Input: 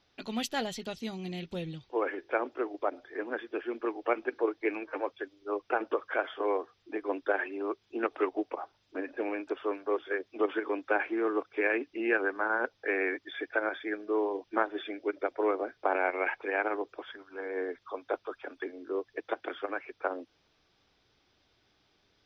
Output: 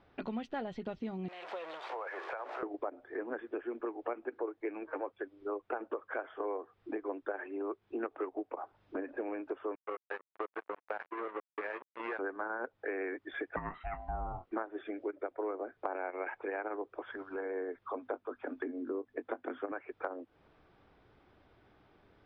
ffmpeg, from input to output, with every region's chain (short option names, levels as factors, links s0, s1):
-filter_complex "[0:a]asettb=1/sr,asplit=3[s0][s1][s2];[s0]atrim=end=1.284[s3];[s1]atrim=start=1.28:end=2.63,asetpts=PTS-STARTPTS,afade=t=in:d=0.004:c=qsin,afade=t=out:st=1.346:d=0.004:c=qsin,aeval=exprs='val(0)+0.5*0.0141*sgn(val(0))':c=same,highpass=f=590:w=0.5412,highpass=f=590:w=1.3066,acompressor=threshold=0.0112:ratio=6:attack=3.2:release=140:knee=1:detection=peak[s4];[s2]atrim=start=2.626[s5];[s3][s4]acrossfade=d=0.004:c1=hsin:c2=qsin[s6];[s6][s5]acrossfade=d=0.004:c1=qsin:c2=hsin,asettb=1/sr,asplit=3[s7][s8][s9];[s7]atrim=end=9.754[s10];[s8]atrim=start=9.75:end=12.19,asetpts=PTS-STARTPTS,afade=t=in:d=0.004:c=qsin,afade=t=out:st=2.436:d=0.004:c=qsin,acompressor=threshold=0.0141:ratio=1.5:attack=3.2:release=140:knee=1:detection=peak,acrusher=bits=4:mix=0:aa=0.5,highpass=520,lowpass=2800[s11];[s9]atrim=start=12.186[s12];[s10][s11]acrossfade=d=0.004:c1=hsin:c2=qsin[s13];[s13][s12]acrossfade=d=0.004:c1=qsin:c2=hsin,asettb=1/sr,asplit=3[s14][s15][s16];[s14]atrim=end=13.564[s17];[s15]atrim=start=13.56:end=14.52,asetpts=PTS-STARTPTS,afade=t=in:d=0.004:c=qsin,afade=t=out:st=0.956:d=0.004:c=qsin,aeval=exprs='val(0)*sin(2*PI*370*n/s)':c=same,asplit=2[s18][s19];[s19]adelay=23,volume=0.251[s20];[s18][s20]amix=inputs=2:normalize=0,atrim=end_sample=42336[s21];[s16]atrim=start=14.516[s22];[s17][s21]acrossfade=d=0.004:c1=hsin:c2=qsin[s23];[s23][s22]acrossfade=d=0.004:c1=qsin:c2=hsin,asettb=1/sr,asplit=3[s24][s25][s26];[s24]atrim=end=17.954[s27];[s25]atrim=start=17.95:end=19.72,asetpts=PTS-STARTPTS,afade=t=in:d=0.004:c=qsin,afade=t=out:st=1.766:d=0.004:c=qsin,equalizer=f=250:t=o:w=0.42:g=14,asplit=2[s28][s29];[s29]adelay=20,volume=0.224[s30];[s28][s30]amix=inputs=2:normalize=0,atrim=end_sample=78057[s31];[s26]atrim=start=19.716[s32];[s27][s31]acrossfade=d=0.004:c1=hsin:c2=qsin[s33];[s33][s32]acrossfade=d=0.004:c1=qsin:c2=hsin,lowpass=1500,acompressor=threshold=0.00501:ratio=4,volume=2.66"